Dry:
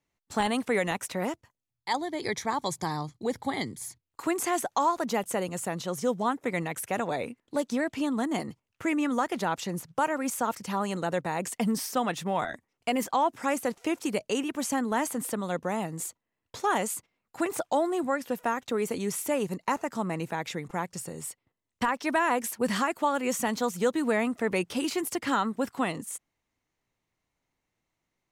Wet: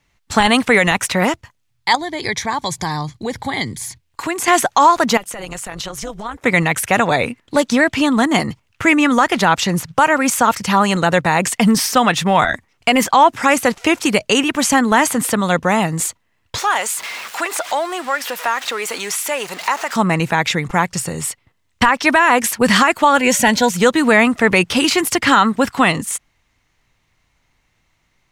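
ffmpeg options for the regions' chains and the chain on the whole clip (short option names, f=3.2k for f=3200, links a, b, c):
-filter_complex "[0:a]asettb=1/sr,asplit=3[a][b][c];[a]atrim=end=1.954[d];[b]atrim=start=1.95:end=4.48,asetpts=PTS-STARTPTS,afade=t=in:d=0.004:c=qsin,afade=t=out:st=2.526:d=0.004:c=qsin,bandreject=f=1.3k:w=9.1,acompressor=threshold=-44dB:ratio=1.5:attack=3.2:release=140:knee=1:detection=peak[e];[c]atrim=start=4.476[f];[d][e]acrossfade=d=0.004:c1=hsin:c2=qsin[g];[g][f]acrossfade=d=0.004:c1=qsin:c2=hsin,asettb=1/sr,asplit=3[h][i][j];[h]atrim=end=5.174[k];[i]atrim=start=5.17:end=6.44,asetpts=PTS-STARTPTS,afade=t=in:d=0.004:c=qsin,afade=t=out:st=1.266:d=0.004:c=qsin,highpass=f=280:p=1,acompressor=threshold=-37dB:ratio=4:attack=3.2:release=140:knee=1:detection=peak,tremolo=f=210:d=0.621[l];[j]atrim=start=6.436[m];[k][l]acrossfade=d=0.004:c1=hsin:c2=qsin[n];[n][m]acrossfade=d=0.004:c1=qsin:c2=hsin,asettb=1/sr,asplit=3[o][p][q];[o]atrim=end=16.584[r];[p]atrim=start=16.58:end=19.96,asetpts=PTS-STARTPTS,afade=t=in:d=0.004:c=qsin,afade=t=out:st=3.376:d=0.004:c=qsin,aeval=exprs='val(0)+0.5*0.0112*sgn(val(0))':c=same,highpass=580,acompressor=threshold=-41dB:ratio=1.5:attack=3.2:release=140:knee=1:detection=peak[s];[q]atrim=start=19.956[t];[r][s]acrossfade=d=0.004:c1=hsin:c2=qsin[u];[u][t]acrossfade=d=0.004:c1=qsin:c2=hsin,asettb=1/sr,asplit=3[v][w][x];[v]atrim=end=23.174[y];[w]atrim=start=23.17:end=23.7,asetpts=PTS-STARTPTS,afade=t=in:d=0.004:c=qsin,afade=t=out:st=0.526:d=0.004:c=qsin,aeval=exprs='val(0)+0.00178*sin(2*PI*580*n/s)':c=same,asuperstop=centerf=1200:order=12:qfactor=4.4[z];[x]atrim=start=23.696[aa];[y][z]acrossfade=d=0.004:c1=hsin:c2=qsin[ab];[ab][aa]acrossfade=d=0.004:c1=qsin:c2=hsin,lowpass=f=2.8k:p=1,equalizer=f=380:w=0.36:g=-12.5,alimiter=level_in=25.5dB:limit=-1dB:release=50:level=0:latency=1,volume=-1dB"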